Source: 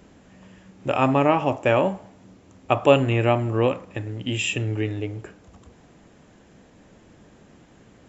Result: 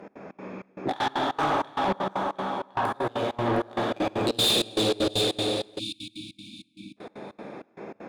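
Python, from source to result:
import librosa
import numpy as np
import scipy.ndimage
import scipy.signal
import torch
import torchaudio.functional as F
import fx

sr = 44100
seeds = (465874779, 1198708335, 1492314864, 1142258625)

y = fx.wiener(x, sr, points=15)
y = fx.formant_shift(y, sr, semitones=5)
y = fx.over_compress(y, sr, threshold_db=-26.0, ratio=-0.5)
y = scipy.signal.sosfilt(scipy.signal.butter(2, 240.0, 'highpass', fs=sr, output='sos'), y)
y = fx.echo_thinned(y, sr, ms=711, feedback_pct=22, hz=590.0, wet_db=-7)
y = fx.rev_plate(y, sr, seeds[0], rt60_s=3.0, hf_ratio=0.85, predelay_ms=0, drr_db=-3.0)
y = fx.step_gate(y, sr, bpm=195, pattern='x.xx.xxx..xx.', floor_db=-24.0, edge_ms=4.5)
y = 10.0 ** (-23.0 / 20.0) * np.tanh(y / 10.0 ** (-23.0 / 20.0))
y = fx.spec_erase(y, sr, start_s=5.79, length_s=1.18, low_hz=340.0, high_hz=2200.0)
y = F.gain(torch.from_numpy(y), 4.0).numpy()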